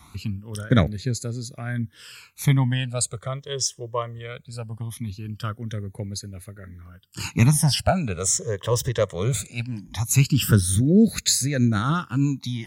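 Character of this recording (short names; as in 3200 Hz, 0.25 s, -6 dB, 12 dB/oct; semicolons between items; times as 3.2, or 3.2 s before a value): phasing stages 12, 0.2 Hz, lowest notch 240–1000 Hz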